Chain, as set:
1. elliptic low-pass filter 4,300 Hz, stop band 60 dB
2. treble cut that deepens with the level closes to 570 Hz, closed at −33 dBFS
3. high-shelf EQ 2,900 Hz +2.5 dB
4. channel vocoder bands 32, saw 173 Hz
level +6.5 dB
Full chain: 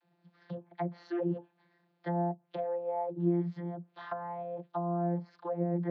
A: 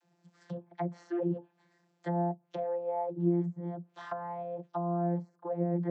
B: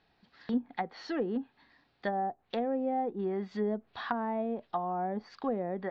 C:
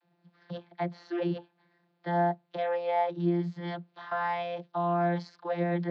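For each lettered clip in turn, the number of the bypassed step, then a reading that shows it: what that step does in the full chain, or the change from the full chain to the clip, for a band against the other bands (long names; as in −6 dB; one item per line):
1, 2 kHz band −1.5 dB
4, 2 kHz band +7.0 dB
2, 2 kHz band +10.0 dB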